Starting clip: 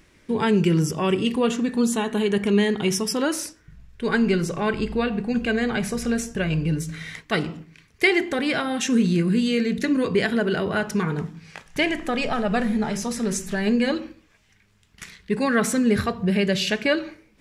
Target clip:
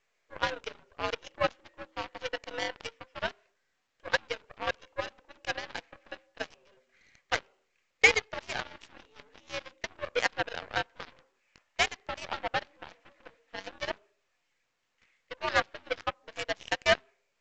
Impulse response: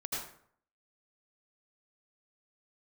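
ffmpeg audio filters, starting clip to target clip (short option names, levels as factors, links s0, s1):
-af "highpass=f=420:t=q:w=0.5412,highpass=f=420:t=q:w=1.307,lowpass=f=3000:t=q:w=0.5176,lowpass=f=3000:t=q:w=0.7071,lowpass=f=3000:t=q:w=1.932,afreqshift=84,aeval=exprs='0.422*(cos(1*acos(clip(val(0)/0.422,-1,1)))-cos(1*PI/2))+0.0106*(cos(3*acos(clip(val(0)/0.422,-1,1)))-cos(3*PI/2))+0.015*(cos(6*acos(clip(val(0)/0.422,-1,1)))-cos(6*PI/2))+0.0596*(cos(7*acos(clip(val(0)/0.422,-1,1)))-cos(7*PI/2))+0.015*(cos(8*acos(clip(val(0)/0.422,-1,1)))-cos(8*PI/2))':c=same" -ar 16000 -c:a pcm_mulaw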